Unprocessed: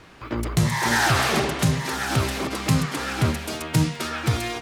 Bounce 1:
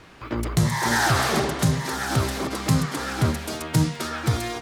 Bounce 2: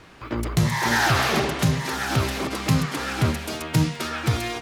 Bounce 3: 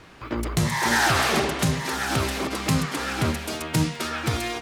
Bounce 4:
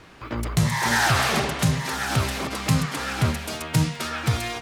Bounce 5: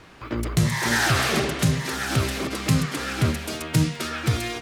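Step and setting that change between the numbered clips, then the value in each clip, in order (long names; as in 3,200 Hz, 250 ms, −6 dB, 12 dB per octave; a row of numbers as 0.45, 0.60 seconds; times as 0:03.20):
dynamic equaliser, frequency: 2,600, 8,600, 120, 340, 880 Hertz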